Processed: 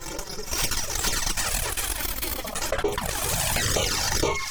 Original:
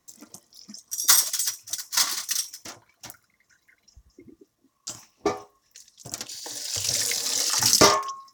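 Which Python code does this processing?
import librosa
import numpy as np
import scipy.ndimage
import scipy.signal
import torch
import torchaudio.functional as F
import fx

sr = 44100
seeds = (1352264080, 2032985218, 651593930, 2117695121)

p1 = fx.lower_of_two(x, sr, delay_ms=2.2)
p2 = fx.high_shelf(p1, sr, hz=5800.0, db=-11.5)
p3 = fx.rider(p2, sr, range_db=3, speed_s=0.5)
p4 = p2 + (p3 * 10.0 ** (-0.5 / 20.0))
p5 = fx.tremolo_shape(p4, sr, shape='saw_up', hz=5.0, depth_pct=35)
p6 = fx.echo_wet_highpass(p5, sr, ms=318, feedback_pct=69, hz=2200.0, wet_db=-23.5)
p7 = fx.stretch_grains(p6, sr, factor=0.54, grain_ms=183.0)
p8 = fx.echo_pitch(p7, sr, ms=594, semitones=5, count=3, db_per_echo=-3.0)
p9 = fx.env_flanger(p8, sr, rest_ms=6.0, full_db=-19.0)
p10 = fx.env_flatten(p9, sr, amount_pct=70)
y = p10 * 10.0 ** (-3.5 / 20.0)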